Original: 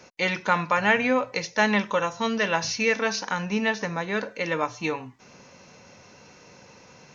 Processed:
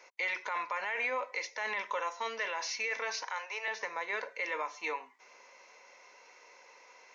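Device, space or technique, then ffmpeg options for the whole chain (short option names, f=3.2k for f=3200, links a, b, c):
laptop speaker: -filter_complex "[0:a]highpass=f=420:w=0.5412,highpass=f=420:w=1.3066,equalizer=f=1k:t=o:w=0.27:g=7.5,equalizer=f=2.1k:t=o:w=0.31:g=11,alimiter=limit=-17dB:level=0:latency=1:release=22,asettb=1/sr,asplit=3[a][b][c];[a]atrim=end=3.234[d];[b]atrim=start=3.23:end=3.68,asetpts=PTS-STARTPTS,afade=t=in:d=0.004:c=qsin,afade=t=out:st=0.446:d=0.004:c=qsin,highpass=f=480:w=0.5412,highpass=f=480:w=1.3066[e];[c]atrim=start=3.676[f];[d][e]acrossfade=d=0.004:c1=hsin:c2=qsin[g];[g][f]acrossfade=d=0.004:c1=qsin:c2=hsin,volume=-8.5dB"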